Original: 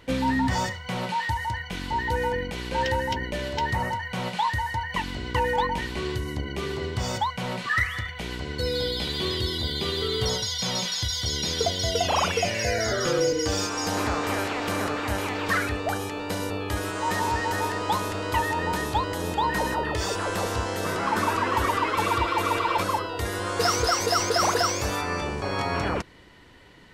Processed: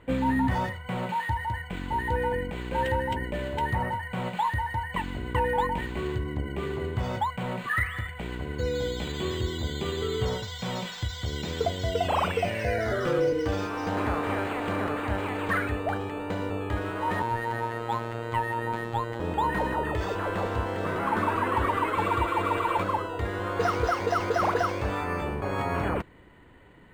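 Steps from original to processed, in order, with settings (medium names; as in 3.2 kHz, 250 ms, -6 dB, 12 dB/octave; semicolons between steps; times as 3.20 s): dynamic bell 5.1 kHz, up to +4 dB, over -41 dBFS, Q 0.75; 17.22–19.20 s: robot voice 116 Hz; distance through air 380 m; decimation joined by straight lines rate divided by 4×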